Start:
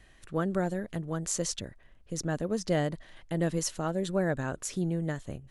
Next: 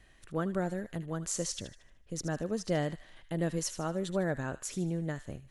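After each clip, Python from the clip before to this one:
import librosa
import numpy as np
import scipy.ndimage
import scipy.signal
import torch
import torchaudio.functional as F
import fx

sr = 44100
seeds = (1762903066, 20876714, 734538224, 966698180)

y = fx.echo_wet_highpass(x, sr, ms=76, feedback_pct=41, hz=1500.0, wet_db=-11)
y = y * librosa.db_to_amplitude(-3.0)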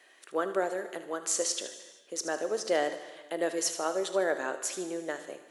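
y = scipy.signal.sosfilt(scipy.signal.butter(4, 370.0, 'highpass', fs=sr, output='sos'), x)
y = fx.rev_gated(y, sr, seeds[0], gate_ms=500, shape='falling', drr_db=9.5)
y = y * librosa.db_to_amplitude(5.5)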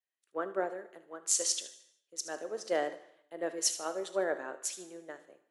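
y = fx.band_widen(x, sr, depth_pct=100)
y = y * librosa.db_to_amplitude(-6.5)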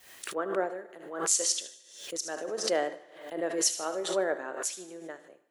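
y = fx.pre_swell(x, sr, db_per_s=78.0)
y = y * librosa.db_to_amplitude(2.5)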